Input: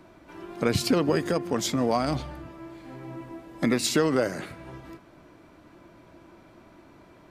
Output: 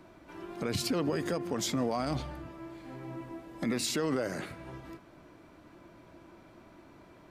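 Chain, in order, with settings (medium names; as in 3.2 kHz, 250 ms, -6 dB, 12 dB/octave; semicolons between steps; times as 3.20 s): peak limiter -19.5 dBFS, peak gain reduction 10 dB; trim -2.5 dB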